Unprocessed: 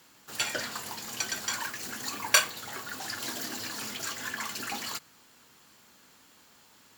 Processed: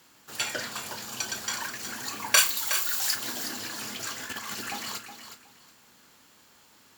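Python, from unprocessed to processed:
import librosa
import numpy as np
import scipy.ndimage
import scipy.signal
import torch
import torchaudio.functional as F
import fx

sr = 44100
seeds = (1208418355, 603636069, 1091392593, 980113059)

y = fx.notch(x, sr, hz=2000.0, q=5.2, at=(0.72, 1.38))
y = fx.tilt_eq(y, sr, slope=4.0, at=(2.37, 3.14), fade=0.02)
y = fx.over_compress(y, sr, threshold_db=-39.0, ratio=-0.5, at=(4.23, 4.64), fade=0.02)
y = fx.doubler(y, sr, ms=33.0, db=-12.0)
y = fx.echo_feedback(y, sr, ms=367, feedback_pct=21, wet_db=-10.0)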